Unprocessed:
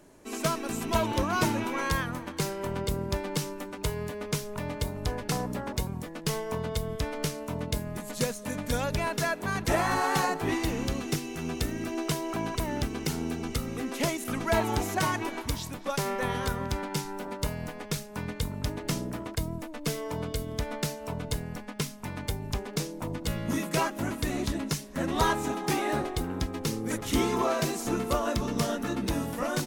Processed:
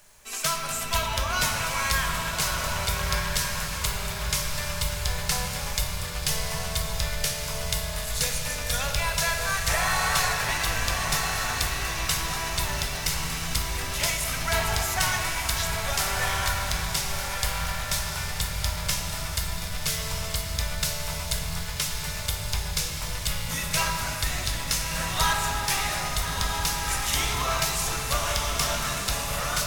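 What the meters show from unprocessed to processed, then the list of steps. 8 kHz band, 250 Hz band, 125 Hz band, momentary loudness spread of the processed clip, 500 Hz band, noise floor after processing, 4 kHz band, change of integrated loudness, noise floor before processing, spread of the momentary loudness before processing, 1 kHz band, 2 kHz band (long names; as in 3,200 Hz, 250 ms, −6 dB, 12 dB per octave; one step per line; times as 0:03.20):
+10.5 dB, −9.0 dB, +1.0 dB, 5 LU, −4.0 dB, −32 dBFS, +10.0 dB, +4.5 dB, −42 dBFS, 8 LU, +2.5 dB, +7.0 dB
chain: guitar amp tone stack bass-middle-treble 10-0-10
feedback delay with all-pass diffusion 1,270 ms, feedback 42%, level −4 dB
rectangular room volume 140 cubic metres, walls hard, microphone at 0.34 metres
log-companded quantiser 6 bits
level +8.5 dB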